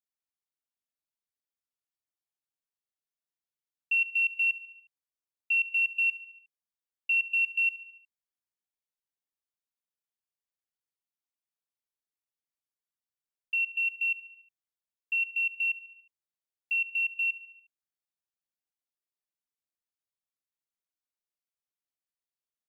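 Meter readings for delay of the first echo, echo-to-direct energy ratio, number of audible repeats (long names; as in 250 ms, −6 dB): 72 ms, −15.5 dB, 4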